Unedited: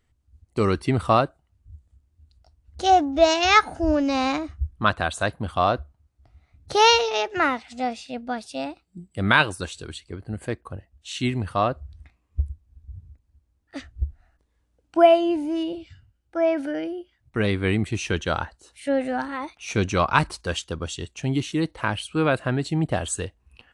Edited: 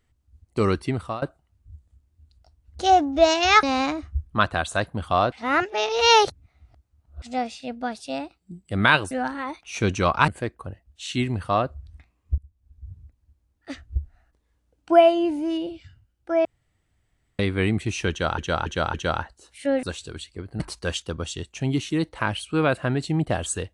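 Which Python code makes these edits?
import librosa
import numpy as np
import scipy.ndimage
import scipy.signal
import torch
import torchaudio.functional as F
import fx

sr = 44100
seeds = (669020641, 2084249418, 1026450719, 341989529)

y = fx.edit(x, sr, fx.fade_out_to(start_s=0.72, length_s=0.5, floor_db=-21.0),
    fx.cut(start_s=3.63, length_s=0.46),
    fx.reverse_span(start_s=5.78, length_s=1.9),
    fx.swap(start_s=9.57, length_s=0.77, other_s=19.05, other_length_s=1.17),
    fx.fade_in_from(start_s=12.44, length_s=0.5, floor_db=-23.0),
    fx.room_tone_fill(start_s=16.51, length_s=0.94),
    fx.repeat(start_s=18.16, length_s=0.28, count=4), tone=tone)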